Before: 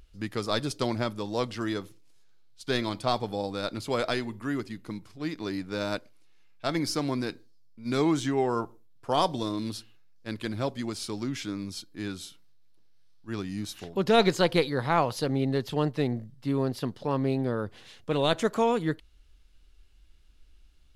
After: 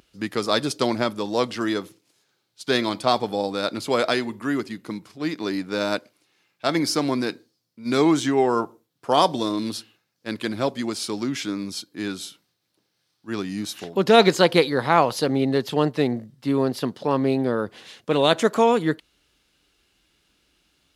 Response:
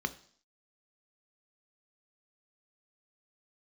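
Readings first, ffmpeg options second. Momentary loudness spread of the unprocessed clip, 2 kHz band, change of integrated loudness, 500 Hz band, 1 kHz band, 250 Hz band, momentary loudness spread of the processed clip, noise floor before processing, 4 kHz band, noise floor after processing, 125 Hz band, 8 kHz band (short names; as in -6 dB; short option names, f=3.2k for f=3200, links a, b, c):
13 LU, +7.0 dB, +6.5 dB, +7.0 dB, +7.0 dB, +6.0 dB, 13 LU, -56 dBFS, +7.0 dB, -74 dBFS, +1.5 dB, +7.0 dB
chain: -af "highpass=180,volume=7dB"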